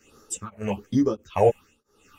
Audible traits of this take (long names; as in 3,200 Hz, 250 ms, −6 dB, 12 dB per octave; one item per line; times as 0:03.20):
phaser sweep stages 6, 1.2 Hz, lowest notch 280–2,600 Hz
tremolo triangle 1.5 Hz, depth 100%
a shimmering, thickened sound